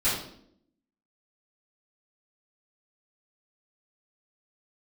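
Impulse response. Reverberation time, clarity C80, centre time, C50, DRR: 0.70 s, 6.5 dB, 47 ms, 2.5 dB, −13.0 dB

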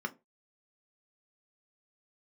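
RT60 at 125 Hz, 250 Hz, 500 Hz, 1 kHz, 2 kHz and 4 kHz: 0.30, 0.25, 0.30, 0.20, 0.20, 0.15 seconds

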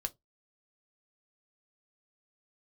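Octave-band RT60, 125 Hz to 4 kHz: 0.20, 0.20, 0.20, 0.15, 0.10, 0.15 seconds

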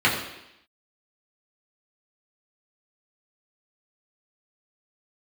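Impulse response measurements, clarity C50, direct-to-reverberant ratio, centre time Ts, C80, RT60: 5.5 dB, −6.5 dB, 37 ms, 7.5 dB, 0.85 s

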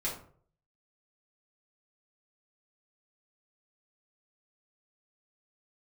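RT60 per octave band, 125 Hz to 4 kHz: 0.70, 0.50, 0.60, 0.45, 0.40, 0.25 seconds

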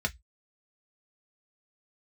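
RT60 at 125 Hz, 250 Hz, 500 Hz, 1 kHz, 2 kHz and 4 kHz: 0.25, 0.10, 0.10, 0.10, 0.15, 0.15 seconds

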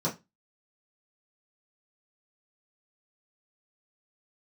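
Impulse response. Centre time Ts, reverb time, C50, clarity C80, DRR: 17 ms, non-exponential decay, 13.5 dB, 22.5 dB, −8.0 dB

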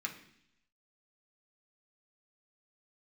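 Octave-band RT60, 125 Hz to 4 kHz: 0.90, 0.85, 0.70, 0.65, 0.85, 0.90 seconds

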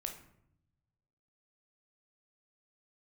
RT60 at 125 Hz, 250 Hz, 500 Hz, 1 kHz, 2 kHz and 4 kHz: 1.7, 1.2, 0.80, 0.70, 0.60, 0.45 seconds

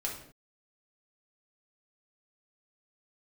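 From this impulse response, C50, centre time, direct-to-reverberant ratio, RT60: 5.5 dB, 30 ms, −3.0 dB, non-exponential decay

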